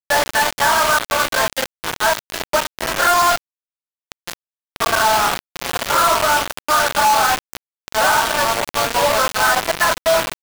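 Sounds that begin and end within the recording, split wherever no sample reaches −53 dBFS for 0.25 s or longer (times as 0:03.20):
0:04.12–0:04.33
0:04.76–0:07.57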